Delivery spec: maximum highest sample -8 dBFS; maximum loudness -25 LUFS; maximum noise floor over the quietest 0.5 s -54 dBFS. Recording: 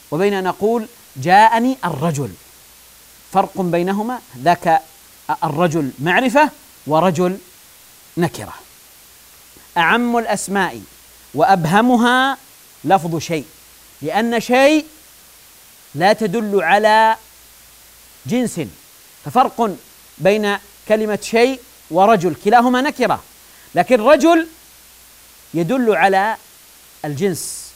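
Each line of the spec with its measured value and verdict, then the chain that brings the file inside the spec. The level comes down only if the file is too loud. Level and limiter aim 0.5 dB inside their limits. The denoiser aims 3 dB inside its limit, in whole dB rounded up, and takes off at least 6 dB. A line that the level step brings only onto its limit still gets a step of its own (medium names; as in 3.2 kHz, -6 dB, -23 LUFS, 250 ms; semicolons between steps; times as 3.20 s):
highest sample -1.5 dBFS: fail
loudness -16.0 LUFS: fail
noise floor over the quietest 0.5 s -45 dBFS: fail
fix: trim -9.5 dB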